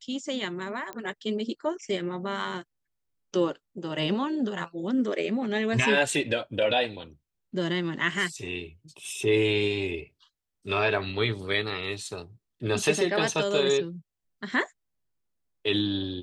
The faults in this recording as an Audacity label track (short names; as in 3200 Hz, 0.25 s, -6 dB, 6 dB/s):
0.930000	0.930000	pop -21 dBFS